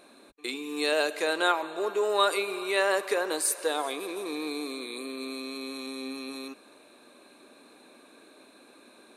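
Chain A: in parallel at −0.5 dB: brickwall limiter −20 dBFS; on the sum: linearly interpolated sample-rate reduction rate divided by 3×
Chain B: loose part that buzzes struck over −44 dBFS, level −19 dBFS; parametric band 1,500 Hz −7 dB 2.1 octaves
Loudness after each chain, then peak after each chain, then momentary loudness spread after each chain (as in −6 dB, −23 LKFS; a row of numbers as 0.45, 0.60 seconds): −25.5, −31.0 LKFS; −8.5, −13.5 dBFS; 10, 7 LU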